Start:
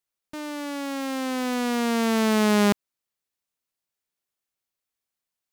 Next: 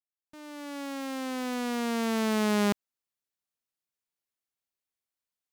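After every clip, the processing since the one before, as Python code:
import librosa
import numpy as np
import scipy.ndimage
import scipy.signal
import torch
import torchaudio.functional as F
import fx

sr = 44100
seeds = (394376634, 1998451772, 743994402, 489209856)

y = fx.fade_in_head(x, sr, length_s=0.81)
y = y * librosa.db_to_amplitude(-6.0)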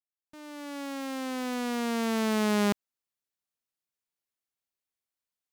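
y = x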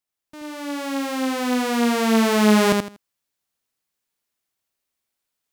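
y = fx.echo_feedback(x, sr, ms=80, feedback_pct=23, wet_db=-3.5)
y = y * librosa.db_to_amplitude(8.5)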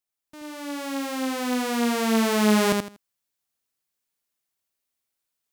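y = fx.high_shelf(x, sr, hz=6000.0, db=4.0)
y = y * librosa.db_to_amplitude(-4.0)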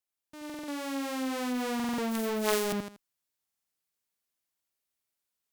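y = fx.cheby_harmonics(x, sr, harmonics=(3, 7), levels_db=(-6, -32), full_scale_db=-9.5)
y = fx.buffer_glitch(y, sr, at_s=(0.45, 1.75, 3.46), block=2048, repeats=4)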